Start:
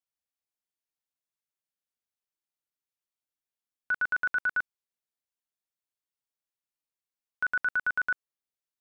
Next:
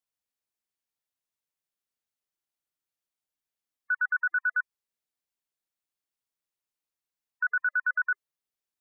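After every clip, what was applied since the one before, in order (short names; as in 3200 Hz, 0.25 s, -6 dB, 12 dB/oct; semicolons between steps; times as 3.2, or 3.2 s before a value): spectral gate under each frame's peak -25 dB strong; gain +1 dB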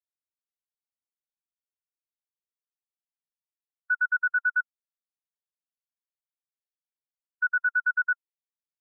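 small resonant body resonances 1000/1400 Hz, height 8 dB, ringing for 30 ms; spectral expander 1.5:1; gain -2 dB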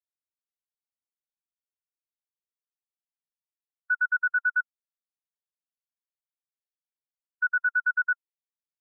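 nothing audible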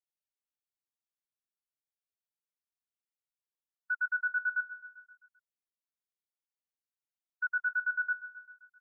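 feedback echo 0.131 s, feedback 59%, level -14.5 dB; gain -7 dB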